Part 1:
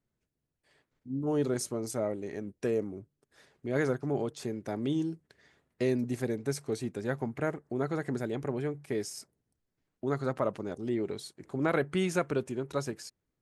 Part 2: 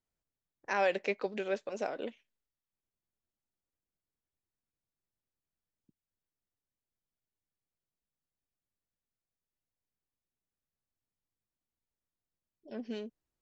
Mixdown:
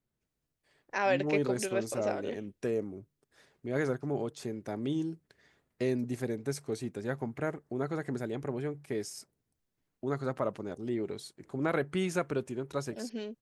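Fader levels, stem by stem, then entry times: −2.0, +1.0 decibels; 0.00, 0.25 seconds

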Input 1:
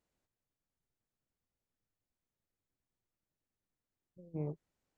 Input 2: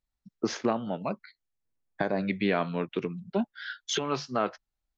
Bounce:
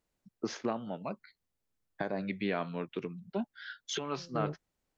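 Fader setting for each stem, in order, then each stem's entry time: +2.0, −6.5 decibels; 0.00, 0.00 seconds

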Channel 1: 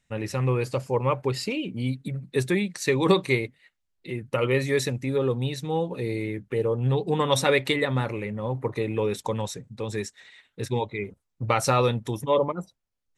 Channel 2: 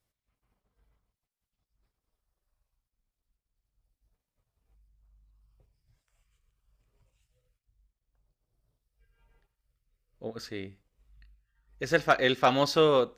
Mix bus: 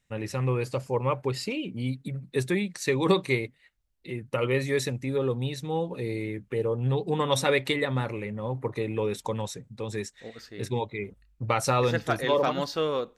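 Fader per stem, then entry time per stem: −2.5, −5.0 decibels; 0.00, 0.00 seconds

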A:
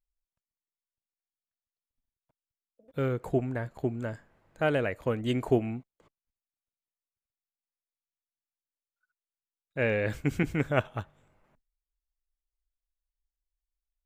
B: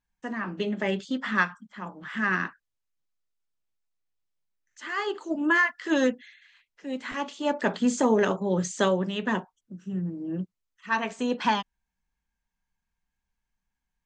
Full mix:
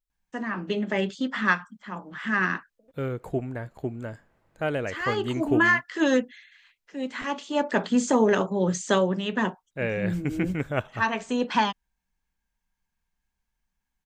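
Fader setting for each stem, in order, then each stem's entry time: −1.0, +1.5 decibels; 0.00, 0.10 seconds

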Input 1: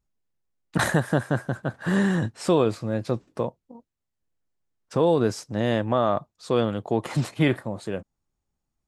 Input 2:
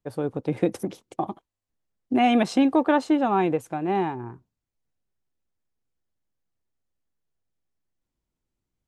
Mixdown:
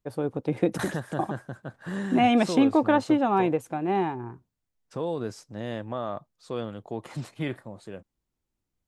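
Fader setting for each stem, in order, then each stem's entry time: −10.0, −1.0 decibels; 0.00, 0.00 seconds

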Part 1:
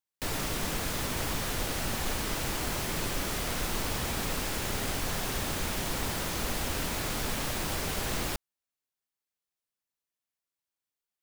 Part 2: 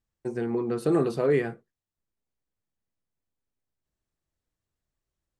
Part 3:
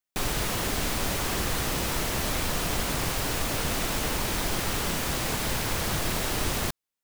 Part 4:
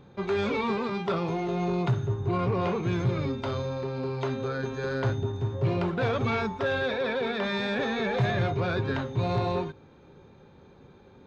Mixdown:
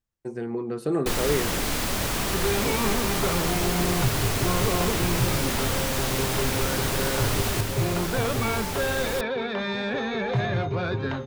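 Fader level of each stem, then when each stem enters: +1.0, −2.0, 0.0, +0.5 decibels; 0.85, 0.00, 0.90, 2.15 seconds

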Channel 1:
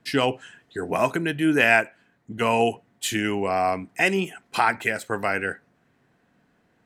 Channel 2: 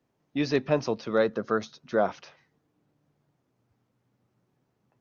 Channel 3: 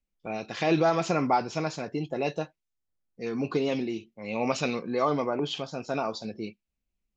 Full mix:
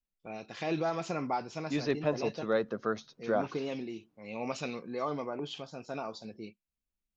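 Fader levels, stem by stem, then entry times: muted, −5.5 dB, −8.5 dB; muted, 1.35 s, 0.00 s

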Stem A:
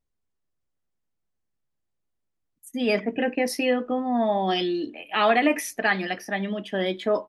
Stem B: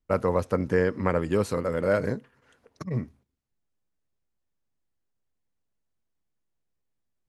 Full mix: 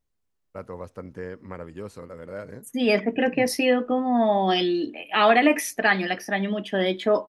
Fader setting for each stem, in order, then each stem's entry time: +2.5, −12.5 decibels; 0.00, 0.45 seconds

